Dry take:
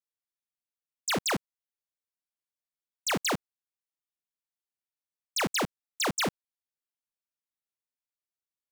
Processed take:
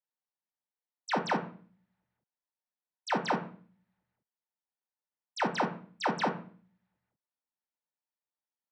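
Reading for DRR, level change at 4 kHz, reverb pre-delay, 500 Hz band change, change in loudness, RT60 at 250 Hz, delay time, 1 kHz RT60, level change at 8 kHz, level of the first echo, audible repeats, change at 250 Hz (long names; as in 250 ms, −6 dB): 3.0 dB, −9.5 dB, 3 ms, −0.5 dB, −2.5 dB, 0.75 s, no echo audible, 0.40 s, −16.0 dB, no echo audible, no echo audible, −1.0 dB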